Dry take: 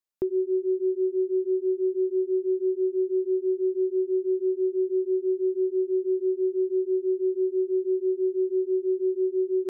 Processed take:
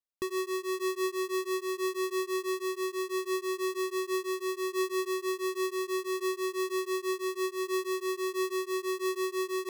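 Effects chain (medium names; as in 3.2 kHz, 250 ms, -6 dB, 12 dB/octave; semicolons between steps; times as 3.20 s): square wave that keeps the level; random flutter of the level, depth 55%; trim -7.5 dB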